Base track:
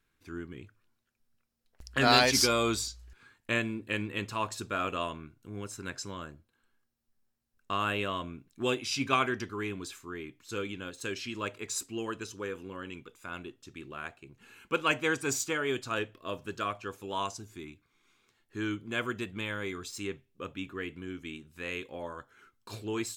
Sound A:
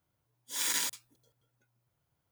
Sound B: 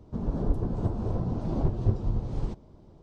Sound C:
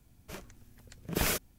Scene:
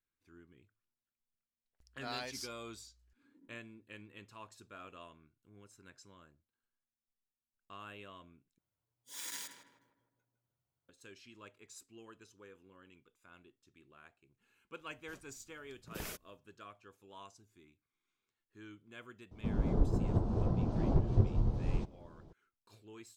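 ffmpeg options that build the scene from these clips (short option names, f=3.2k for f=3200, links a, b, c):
-filter_complex "[1:a]asplit=2[a][b];[0:a]volume=-19dB[c];[a]asuperpass=centerf=250:order=4:qfactor=2.2[d];[b]asplit=2[e][f];[f]adelay=157,lowpass=f=1.4k:p=1,volume=-4.5dB,asplit=2[g][h];[h]adelay=157,lowpass=f=1.4k:p=1,volume=0.53,asplit=2[i][j];[j]adelay=157,lowpass=f=1.4k:p=1,volume=0.53,asplit=2[k][l];[l]adelay=157,lowpass=f=1.4k:p=1,volume=0.53,asplit=2[m][n];[n]adelay=157,lowpass=f=1.4k:p=1,volume=0.53,asplit=2[o][p];[p]adelay=157,lowpass=f=1.4k:p=1,volume=0.53,asplit=2[q][r];[r]adelay=157,lowpass=f=1.4k:p=1,volume=0.53[s];[e][g][i][k][m][o][q][s]amix=inputs=8:normalize=0[t];[c]asplit=2[u][v];[u]atrim=end=8.584[w];[t]atrim=end=2.31,asetpts=PTS-STARTPTS,volume=-12.5dB[x];[v]atrim=start=10.886[y];[d]atrim=end=2.31,asetpts=PTS-STARTPTS,volume=-10.5dB,afade=t=in:d=0.004:c=hsin,afade=t=out:st=2.306:d=0.004:c=hsin,adelay=2670[z];[3:a]atrim=end=1.58,asetpts=PTS-STARTPTS,volume=-14.5dB,afade=t=in:d=0.004:c=hsin,afade=t=out:st=1.576:d=0.004:c=hsin,adelay=14790[aa];[2:a]atrim=end=3.02,asetpts=PTS-STARTPTS,volume=-3dB,afade=t=in:d=0.004:c=hsin,afade=t=out:st=3.016:d=0.004:c=hsin,adelay=19310[ab];[w][x]acrossfade=d=0.004:c1=hsin:c2=hsin[ac];[ac][y]acrossfade=d=0.004:c1=hsin:c2=hsin[ad];[ad][z][aa][ab]amix=inputs=4:normalize=0"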